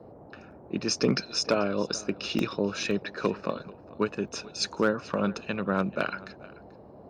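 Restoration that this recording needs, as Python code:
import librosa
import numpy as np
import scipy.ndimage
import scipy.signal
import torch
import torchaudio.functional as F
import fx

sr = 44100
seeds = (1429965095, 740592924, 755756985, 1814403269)

y = fx.fix_declip(x, sr, threshold_db=-13.5)
y = fx.fix_interpolate(y, sr, at_s=(2.39, 2.91, 4.28), length_ms=1.5)
y = fx.noise_reduce(y, sr, print_start_s=6.54, print_end_s=7.04, reduce_db=25.0)
y = fx.fix_echo_inverse(y, sr, delay_ms=437, level_db=-20.5)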